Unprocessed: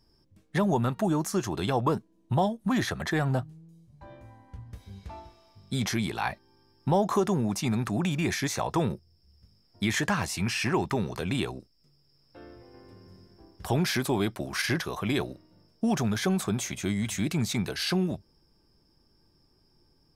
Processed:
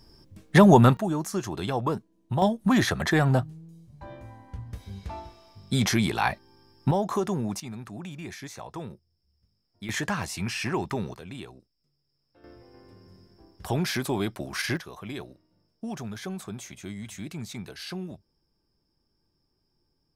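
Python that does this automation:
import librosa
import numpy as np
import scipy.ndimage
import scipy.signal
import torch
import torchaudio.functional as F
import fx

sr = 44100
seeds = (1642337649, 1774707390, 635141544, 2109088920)

y = fx.gain(x, sr, db=fx.steps((0.0, 10.5), (0.97, -1.5), (2.42, 5.0), (6.91, -2.0), (7.6, -11.0), (9.89, -2.0), (11.14, -11.0), (12.44, -1.0), (14.77, -9.0)))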